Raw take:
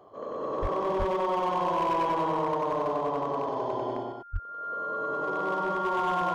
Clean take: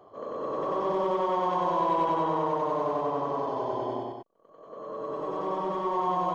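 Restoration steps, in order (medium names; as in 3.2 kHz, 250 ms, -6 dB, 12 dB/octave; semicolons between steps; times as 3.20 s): clip repair -22 dBFS; band-stop 1.4 kHz, Q 30; 0.61–0.73 s: high-pass 140 Hz 24 dB/octave; 0.98–1.10 s: high-pass 140 Hz 24 dB/octave; 4.32–4.44 s: high-pass 140 Hz 24 dB/octave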